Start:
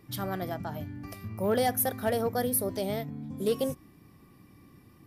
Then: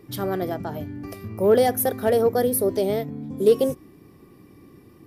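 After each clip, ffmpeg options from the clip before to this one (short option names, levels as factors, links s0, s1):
-af "equalizer=f=400:t=o:w=0.94:g=10,volume=1.41"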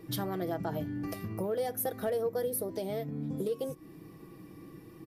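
-af "acompressor=threshold=0.0316:ratio=6,aecho=1:1:6.2:0.5,volume=0.841"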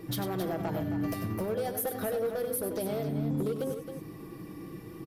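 -filter_complex "[0:a]acompressor=threshold=0.02:ratio=6,volume=47.3,asoftclip=hard,volume=0.0211,asplit=2[s0][s1];[s1]aecho=0:1:96.21|268.2:0.355|0.355[s2];[s0][s2]amix=inputs=2:normalize=0,volume=1.88"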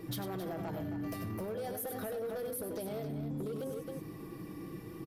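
-af "alimiter=level_in=2.24:limit=0.0631:level=0:latency=1:release=10,volume=0.447,volume=0.841"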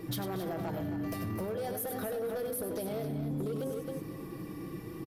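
-af "aecho=1:1:234|468|702|936:0.15|0.0643|0.0277|0.0119,volume=1.41"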